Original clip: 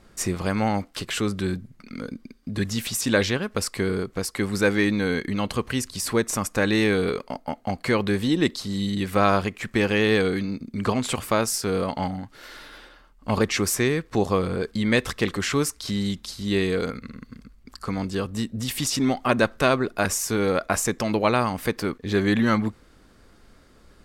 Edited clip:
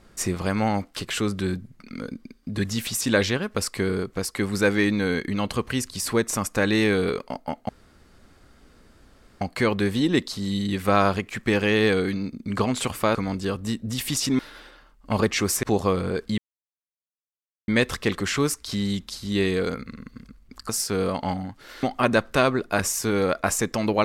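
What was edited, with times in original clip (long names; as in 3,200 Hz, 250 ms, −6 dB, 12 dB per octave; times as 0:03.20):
0:07.69: splice in room tone 1.72 s
0:11.43–0:12.57: swap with 0:17.85–0:19.09
0:13.81–0:14.09: remove
0:14.84: splice in silence 1.30 s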